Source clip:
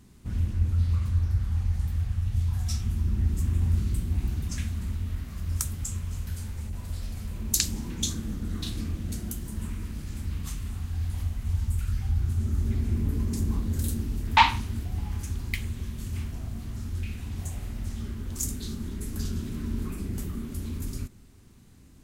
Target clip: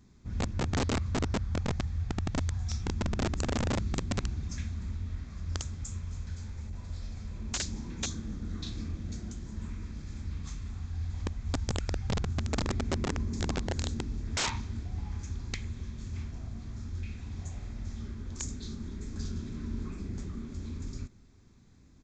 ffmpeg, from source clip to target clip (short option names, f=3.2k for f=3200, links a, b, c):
-af "bandreject=f=2.9k:w=6.6,aresample=16000,aeval=exprs='(mod(9.44*val(0)+1,2)-1)/9.44':c=same,aresample=44100,volume=-5dB"